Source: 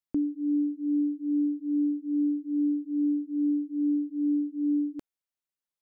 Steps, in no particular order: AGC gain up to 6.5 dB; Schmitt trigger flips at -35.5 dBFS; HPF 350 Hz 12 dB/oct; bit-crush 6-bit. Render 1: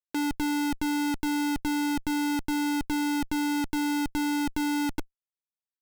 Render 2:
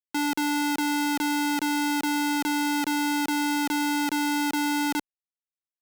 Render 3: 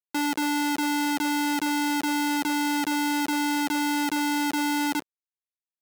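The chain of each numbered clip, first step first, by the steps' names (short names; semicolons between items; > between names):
HPF > bit-crush > AGC > Schmitt trigger; AGC > bit-crush > Schmitt trigger > HPF; AGC > Schmitt trigger > bit-crush > HPF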